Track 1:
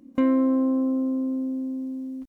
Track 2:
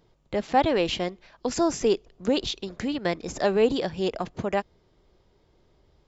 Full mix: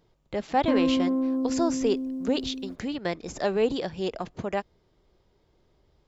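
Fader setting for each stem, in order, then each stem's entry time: −3.0, −3.0 decibels; 0.50, 0.00 seconds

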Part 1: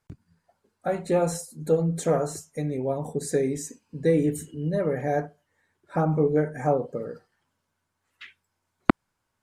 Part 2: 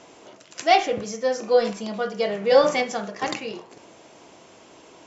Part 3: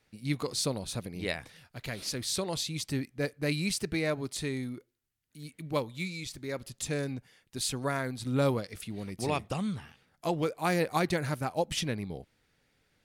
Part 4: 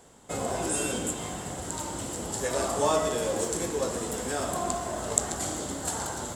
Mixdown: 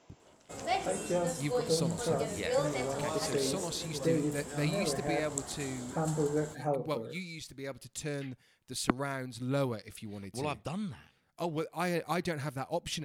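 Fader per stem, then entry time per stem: −9.0, −15.0, −4.5, −12.0 decibels; 0.00, 0.00, 1.15, 0.20 seconds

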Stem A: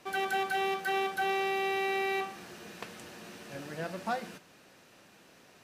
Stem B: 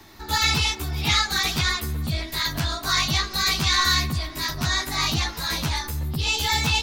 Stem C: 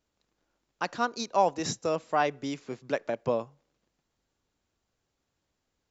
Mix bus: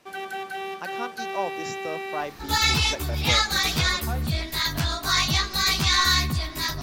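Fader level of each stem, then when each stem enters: −2.0, 0.0, −5.5 decibels; 0.00, 2.20, 0.00 seconds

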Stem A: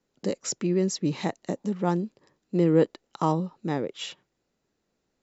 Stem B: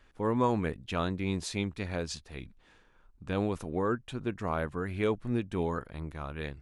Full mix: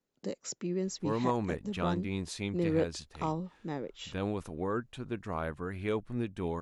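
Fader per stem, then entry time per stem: −9.0, −3.5 decibels; 0.00, 0.85 seconds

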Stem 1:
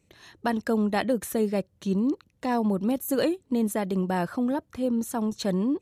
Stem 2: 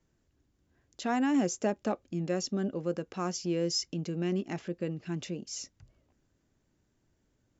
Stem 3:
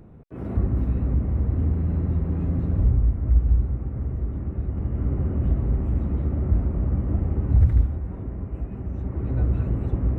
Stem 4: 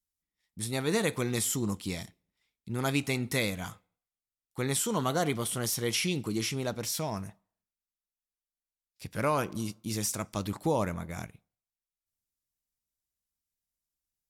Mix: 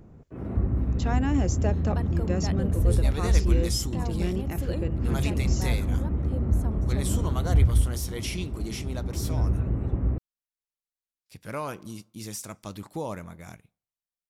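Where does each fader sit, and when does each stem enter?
−12.0, 0.0, −2.5, −5.0 decibels; 1.50, 0.00, 0.00, 2.30 seconds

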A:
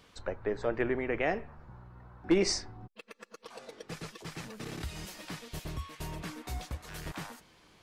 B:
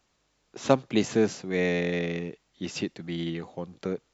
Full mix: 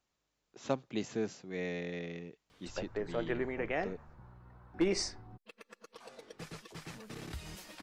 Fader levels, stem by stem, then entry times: −4.5, −12.0 decibels; 2.50, 0.00 seconds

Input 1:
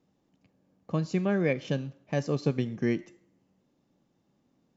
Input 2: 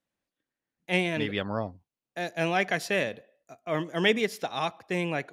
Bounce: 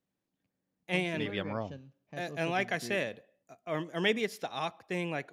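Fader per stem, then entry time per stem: −16.5, −5.0 decibels; 0.00, 0.00 seconds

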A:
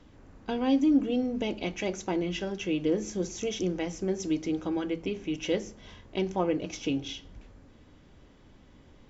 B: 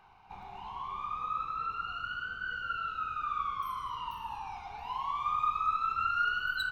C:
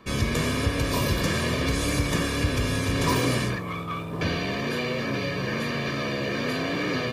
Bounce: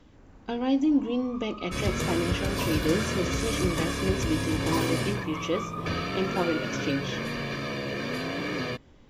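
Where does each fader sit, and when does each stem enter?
0.0, −9.0, −4.0 decibels; 0.00, 0.30, 1.65 seconds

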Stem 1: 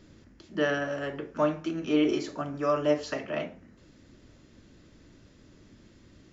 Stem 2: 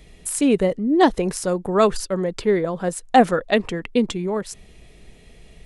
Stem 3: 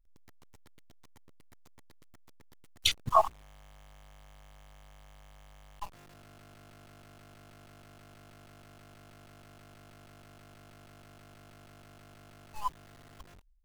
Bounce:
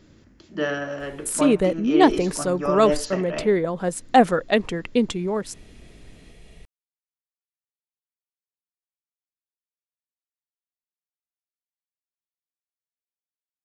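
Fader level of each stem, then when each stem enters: +1.5 dB, −1.0 dB, muted; 0.00 s, 1.00 s, muted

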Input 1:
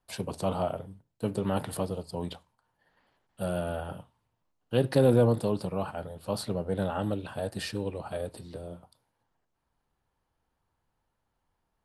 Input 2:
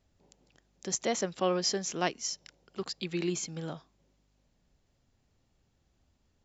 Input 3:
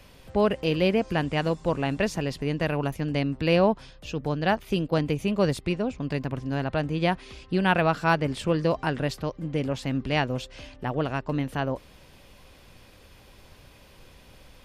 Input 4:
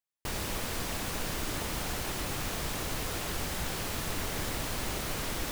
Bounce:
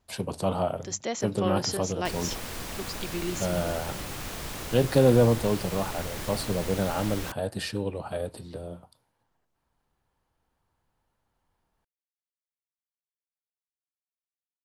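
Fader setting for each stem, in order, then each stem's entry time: +2.5 dB, −1.0 dB, muted, −2.0 dB; 0.00 s, 0.00 s, muted, 1.80 s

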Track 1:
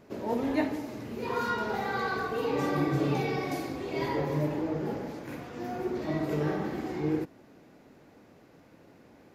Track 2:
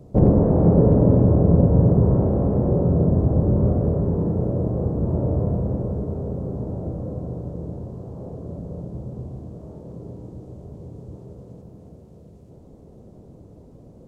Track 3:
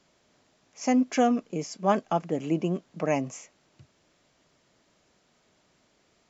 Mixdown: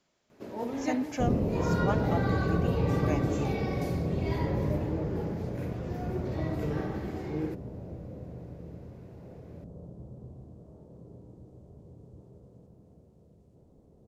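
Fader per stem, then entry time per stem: −4.5, −12.5, −8.5 decibels; 0.30, 1.05, 0.00 seconds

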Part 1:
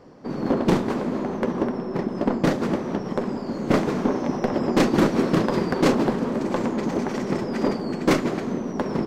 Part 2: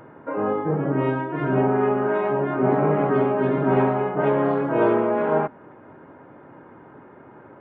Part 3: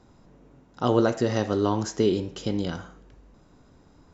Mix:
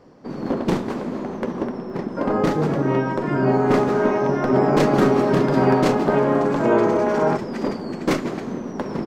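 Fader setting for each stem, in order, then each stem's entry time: −1.5 dB, +1.5 dB, muted; 0.00 s, 1.90 s, muted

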